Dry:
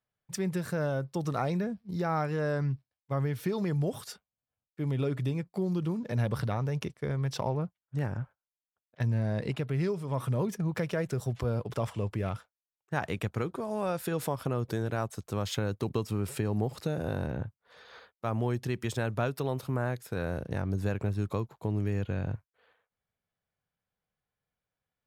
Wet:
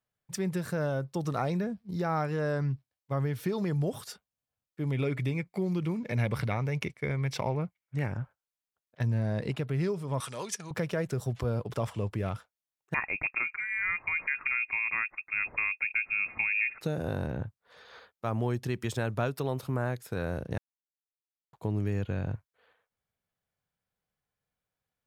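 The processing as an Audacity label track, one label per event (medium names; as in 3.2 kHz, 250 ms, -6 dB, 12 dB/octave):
4.920000	8.130000	peaking EQ 2.2 kHz +14.5 dB 0.32 oct
10.200000	10.710000	frequency weighting ITU-R 468
12.940000	16.810000	frequency inversion carrier 2.6 kHz
20.580000	21.530000	mute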